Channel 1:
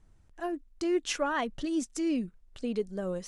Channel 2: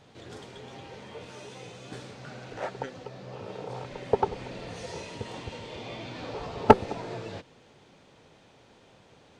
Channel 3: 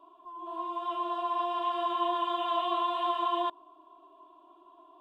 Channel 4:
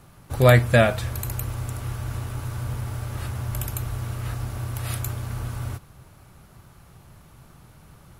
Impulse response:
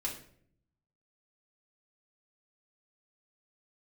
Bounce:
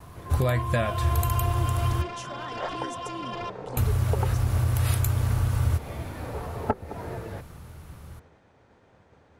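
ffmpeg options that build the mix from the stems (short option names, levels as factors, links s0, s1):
-filter_complex "[0:a]highshelf=f=5200:g=10.5,adelay=1100,volume=0.447[s0];[1:a]highshelf=f=2300:t=q:w=1.5:g=-7.5,volume=1[s1];[2:a]aeval=exprs='0.126*sin(PI/2*2.82*val(0)/0.126)':c=same,volume=0.282[s2];[3:a]dynaudnorm=f=410:g=9:m=2.11,volume=1.19,asplit=3[s3][s4][s5];[s3]atrim=end=2.02,asetpts=PTS-STARTPTS,afade=t=out:st=2.016:d=0.004:c=hsin[s6];[s4]atrim=start=2.02:end=3.77,asetpts=PTS-STARTPTS,volume=0[s7];[s5]atrim=start=3.77,asetpts=PTS-STARTPTS,afade=t=in:d=0.004:c=hsin[s8];[s6][s7][s8]concat=n=3:v=0:a=1[s9];[s0][s2]amix=inputs=2:normalize=0,alimiter=level_in=1.58:limit=0.0631:level=0:latency=1:release=459,volume=0.631,volume=1[s10];[s1][s9]amix=inputs=2:normalize=0,acompressor=threshold=0.0562:ratio=4,volume=1[s11];[s10][s11]amix=inputs=2:normalize=0,agate=range=0.0224:threshold=0.002:ratio=3:detection=peak,equalizer=f=77:t=o:w=0.59:g=11.5"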